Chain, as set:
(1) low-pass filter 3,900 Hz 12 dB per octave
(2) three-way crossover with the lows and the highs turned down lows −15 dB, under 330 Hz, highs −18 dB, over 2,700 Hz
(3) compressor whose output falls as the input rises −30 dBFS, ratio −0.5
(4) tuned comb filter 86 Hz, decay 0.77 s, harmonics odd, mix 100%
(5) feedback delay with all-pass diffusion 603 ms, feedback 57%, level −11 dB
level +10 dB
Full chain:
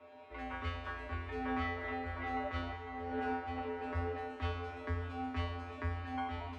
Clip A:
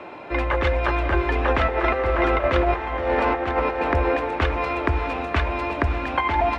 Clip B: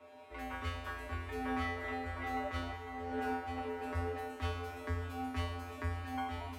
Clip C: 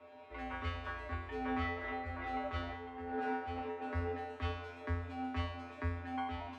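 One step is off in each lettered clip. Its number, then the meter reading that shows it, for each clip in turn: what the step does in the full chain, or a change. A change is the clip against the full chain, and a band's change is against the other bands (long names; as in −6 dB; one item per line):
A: 4, 500 Hz band +5.0 dB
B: 1, 4 kHz band +1.5 dB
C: 5, echo-to-direct ratio −9.5 dB to none audible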